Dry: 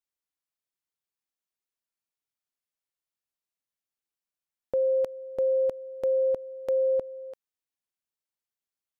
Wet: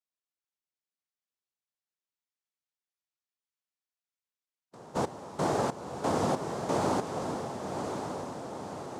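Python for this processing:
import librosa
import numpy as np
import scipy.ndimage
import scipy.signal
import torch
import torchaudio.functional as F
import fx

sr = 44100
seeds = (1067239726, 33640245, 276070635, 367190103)

p1 = fx.spec_box(x, sr, start_s=2.2, length_s=2.75, low_hz=330.0, high_hz=1100.0, gain_db=-21)
p2 = fx.noise_vocoder(p1, sr, seeds[0], bands=2)
p3 = p2 + fx.echo_diffused(p2, sr, ms=1070, feedback_pct=58, wet_db=-5.5, dry=0)
y = p3 * librosa.db_to_amplitude(-4.5)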